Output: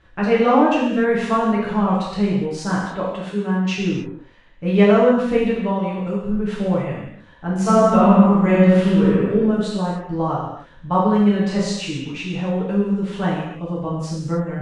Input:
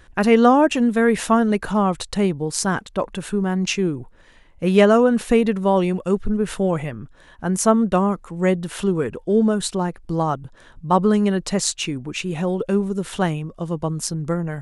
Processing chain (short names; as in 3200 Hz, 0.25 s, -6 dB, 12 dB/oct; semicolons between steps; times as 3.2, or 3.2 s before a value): LPF 4000 Hz 12 dB/oct; notch 360 Hz, Q 12; 3.08–3.78 HPF 190 Hz; 5.7–6.29 compressor, threshold -20 dBFS, peak gain reduction 6.5 dB; 7.52–9.24 reverb throw, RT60 1.2 s, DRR -4 dB; 11.23–11.78 doubler 34 ms -4 dB; non-linear reverb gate 0.33 s falling, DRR -7 dB; gain -8 dB